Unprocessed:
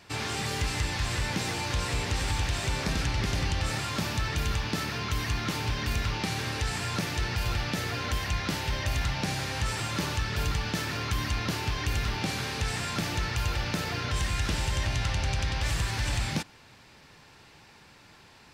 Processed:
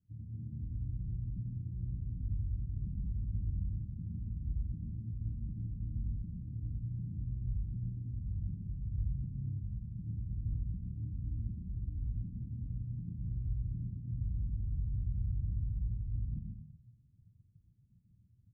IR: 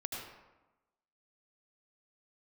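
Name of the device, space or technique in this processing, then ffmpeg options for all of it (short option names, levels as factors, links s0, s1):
club heard from the street: -filter_complex "[0:a]alimiter=level_in=2:limit=0.0631:level=0:latency=1,volume=0.501,lowpass=f=200:w=0.5412,lowpass=f=200:w=1.3066[s0];[1:a]atrim=start_sample=2205[s1];[s0][s1]afir=irnorm=-1:irlink=0,afftdn=nr=14:nf=-44,volume=1.12"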